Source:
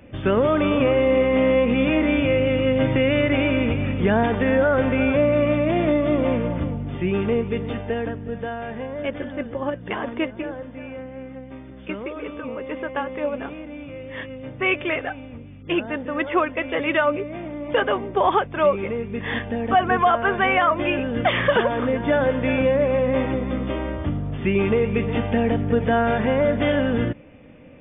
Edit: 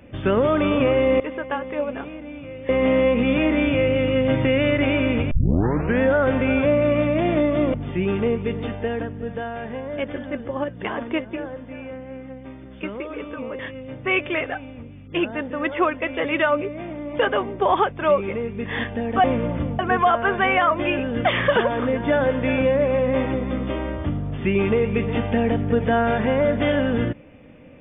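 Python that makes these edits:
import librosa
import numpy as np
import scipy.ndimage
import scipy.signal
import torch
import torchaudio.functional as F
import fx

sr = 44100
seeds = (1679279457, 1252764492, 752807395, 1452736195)

y = fx.edit(x, sr, fx.tape_start(start_s=3.82, length_s=0.69),
    fx.move(start_s=6.25, length_s=0.55, to_s=19.79),
    fx.move(start_s=12.65, length_s=1.49, to_s=1.2), tone=tone)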